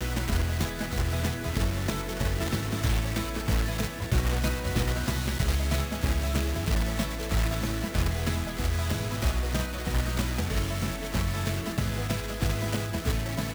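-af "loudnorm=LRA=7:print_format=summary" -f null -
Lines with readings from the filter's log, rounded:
Input Integrated:    -29.3 LUFS
Input True Peak:     -14.0 dBTP
Input LRA:             1.5 LU
Input Threshold:     -39.3 LUFS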